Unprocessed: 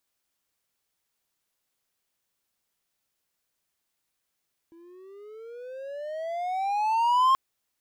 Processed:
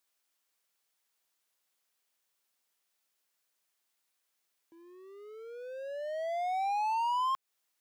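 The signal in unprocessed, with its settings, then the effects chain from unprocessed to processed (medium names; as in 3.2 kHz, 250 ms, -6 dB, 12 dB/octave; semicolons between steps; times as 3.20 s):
gliding synth tone triangle, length 2.63 s, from 329 Hz, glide +20.5 st, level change +32 dB, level -14.5 dB
high-pass 500 Hz 6 dB/octave; compression 6:1, threshold -29 dBFS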